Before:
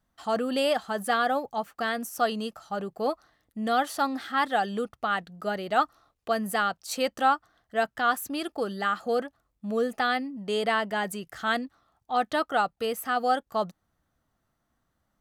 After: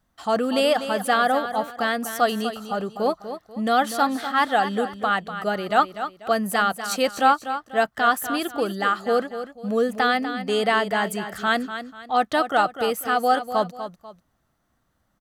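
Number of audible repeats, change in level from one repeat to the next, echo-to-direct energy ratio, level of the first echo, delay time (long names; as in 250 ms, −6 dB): 2, −9.5 dB, −10.0 dB, −10.5 dB, 245 ms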